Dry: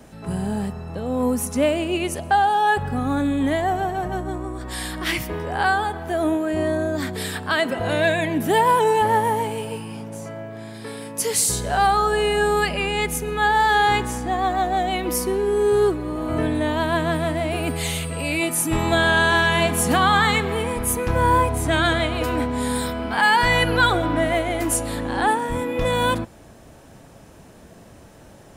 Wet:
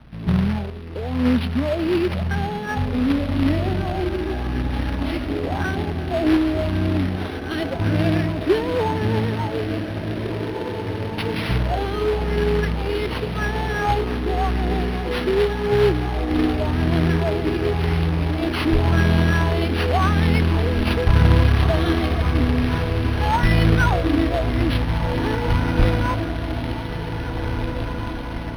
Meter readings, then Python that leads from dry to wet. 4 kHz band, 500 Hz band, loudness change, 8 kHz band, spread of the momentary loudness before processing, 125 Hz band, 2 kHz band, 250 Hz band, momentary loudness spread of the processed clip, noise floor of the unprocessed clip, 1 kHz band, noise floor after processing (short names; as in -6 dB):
-3.5 dB, -1.0 dB, -0.5 dB, -17.5 dB, 11 LU, +8.5 dB, -5.0 dB, +3.5 dB, 9 LU, -46 dBFS, -6.5 dB, -28 dBFS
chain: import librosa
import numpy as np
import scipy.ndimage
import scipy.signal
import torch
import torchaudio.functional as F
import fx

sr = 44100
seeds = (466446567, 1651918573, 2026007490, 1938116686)

p1 = fx.phaser_stages(x, sr, stages=4, low_hz=130.0, high_hz=1200.0, hz=0.9, feedback_pct=40)
p2 = fx.tilt_shelf(p1, sr, db=6.0, hz=740.0)
p3 = fx.quant_dither(p2, sr, seeds[0], bits=6, dither='none')
p4 = p2 + (p3 * librosa.db_to_amplitude(-7.0))
p5 = fx.echo_diffused(p4, sr, ms=1982, feedback_pct=60, wet_db=-7.0)
p6 = fx.quant_companded(p5, sr, bits=4)
p7 = fx.bass_treble(p6, sr, bass_db=3, treble_db=5)
p8 = np.interp(np.arange(len(p7)), np.arange(len(p7))[::6], p7[::6])
y = p8 * librosa.db_to_amplitude(-4.5)